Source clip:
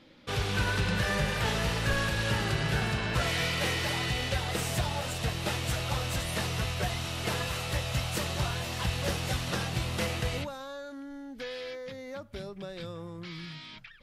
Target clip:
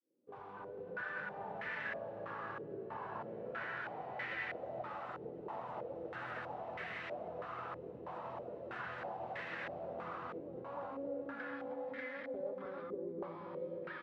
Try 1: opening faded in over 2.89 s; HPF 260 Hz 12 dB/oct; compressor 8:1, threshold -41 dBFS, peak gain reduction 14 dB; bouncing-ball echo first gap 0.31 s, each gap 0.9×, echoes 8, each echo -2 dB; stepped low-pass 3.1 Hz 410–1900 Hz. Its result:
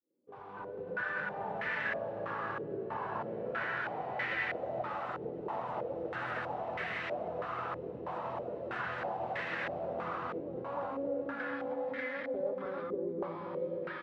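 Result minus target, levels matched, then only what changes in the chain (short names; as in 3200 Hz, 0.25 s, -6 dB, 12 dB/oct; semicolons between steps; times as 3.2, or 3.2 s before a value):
compressor: peak gain reduction -6.5 dB
change: compressor 8:1, threshold -48.5 dBFS, peak gain reduction 20.5 dB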